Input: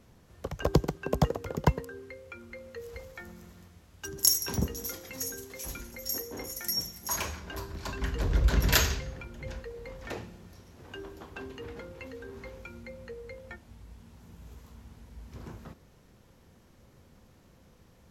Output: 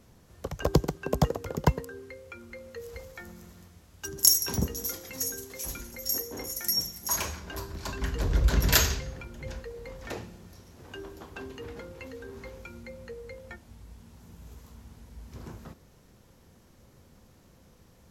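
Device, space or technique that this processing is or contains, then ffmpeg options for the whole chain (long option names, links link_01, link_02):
exciter from parts: -filter_complex "[0:a]asplit=2[link_01][link_02];[link_02]highpass=3700,asoftclip=type=tanh:threshold=-14dB,volume=-6dB[link_03];[link_01][link_03]amix=inputs=2:normalize=0,volume=1dB"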